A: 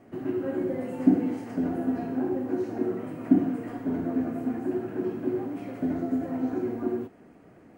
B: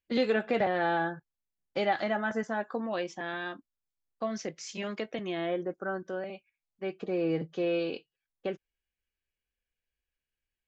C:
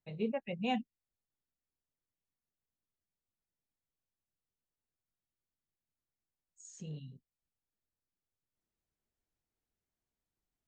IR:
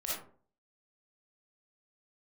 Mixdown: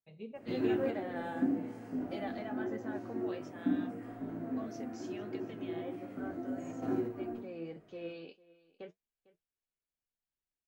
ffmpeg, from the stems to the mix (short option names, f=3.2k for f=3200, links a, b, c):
-filter_complex "[0:a]flanger=delay=18:depth=2.8:speed=0.77,adelay=350,volume=-1dB,asplit=2[a][b];[b]volume=-13.5dB[c];[1:a]flanger=delay=8.3:depth=4.7:regen=49:speed=1.6:shape=sinusoidal,adelay=350,volume=-10dB,asplit=2[d][e];[e]volume=-21dB[f];[2:a]lowshelf=f=120:g=-4.5,volume=-11dB,asplit=3[g][h][i];[h]volume=-16dB[j];[i]apad=whole_len=358263[k];[a][k]sidechaingate=range=-11dB:threshold=-59dB:ratio=16:detection=peak[l];[3:a]atrim=start_sample=2205[m];[c][j]amix=inputs=2:normalize=0[n];[n][m]afir=irnorm=-1:irlink=0[o];[f]aecho=0:1:452:1[p];[l][d][g][o][p]amix=inputs=5:normalize=0"